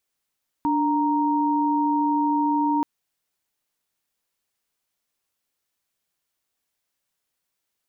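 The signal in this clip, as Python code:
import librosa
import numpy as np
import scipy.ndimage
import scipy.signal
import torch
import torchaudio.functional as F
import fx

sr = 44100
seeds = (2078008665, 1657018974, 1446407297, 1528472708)

y = fx.chord(sr, length_s=2.18, notes=(62, 82), wave='sine', level_db=-21.5)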